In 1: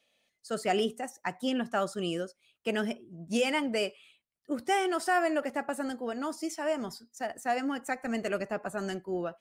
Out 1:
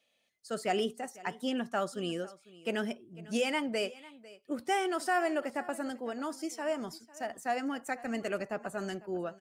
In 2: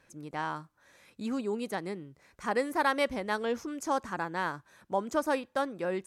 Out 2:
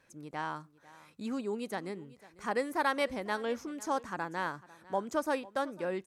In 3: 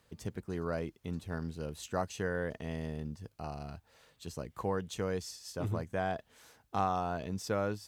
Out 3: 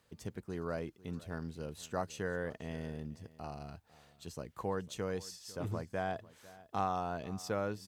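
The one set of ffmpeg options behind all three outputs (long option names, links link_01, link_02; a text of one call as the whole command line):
ffmpeg -i in.wav -af "lowshelf=frequency=69:gain=-5,aecho=1:1:499:0.1,volume=-2.5dB" out.wav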